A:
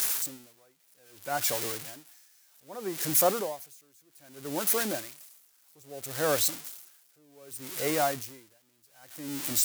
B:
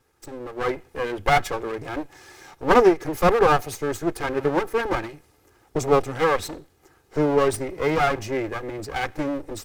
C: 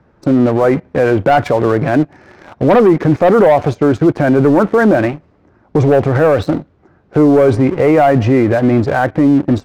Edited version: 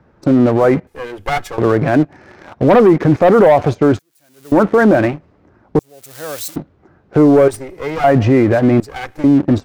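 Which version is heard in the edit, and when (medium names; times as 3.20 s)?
C
0.87–1.58 s: from B
3.99–4.52 s: from A
5.79–6.56 s: from A
7.48–8.04 s: from B
8.80–9.24 s: from B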